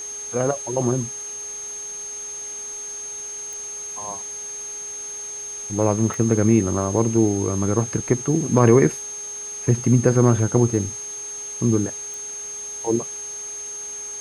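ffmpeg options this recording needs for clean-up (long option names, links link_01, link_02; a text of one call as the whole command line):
ffmpeg -i in.wav -af "adeclick=threshold=4,bandreject=frequency=414.7:width_type=h:width=4,bandreject=frequency=829.4:width_type=h:width=4,bandreject=frequency=1244.1:width_type=h:width=4,bandreject=frequency=1658.8:width_type=h:width=4,bandreject=frequency=2073.5:width_type=h:width=4,bandreject=frequency=6400:width=30,afwtdn=0.0071" out.wav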